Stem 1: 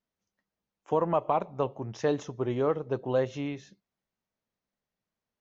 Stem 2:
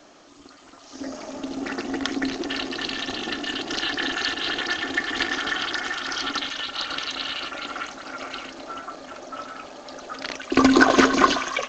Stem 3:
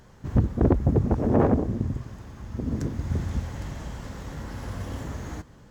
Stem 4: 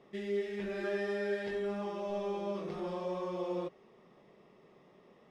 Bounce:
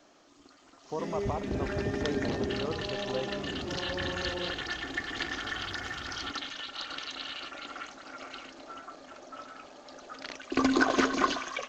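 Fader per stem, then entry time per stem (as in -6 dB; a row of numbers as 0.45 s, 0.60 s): -9.0 dB, -9.5 dB, -14.5 dB, -1.5 dB; 0.00 s, 0.00 s, 0.90 s, 0.85 s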